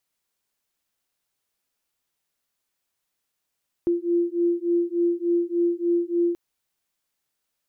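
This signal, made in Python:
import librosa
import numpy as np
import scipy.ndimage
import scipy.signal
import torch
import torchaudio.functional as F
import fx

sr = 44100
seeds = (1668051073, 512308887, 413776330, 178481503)

y = fx.two_tone_beats(sr, length_s=2.48, hz=343.0, beat_hz=3.4, level_db=-23.0)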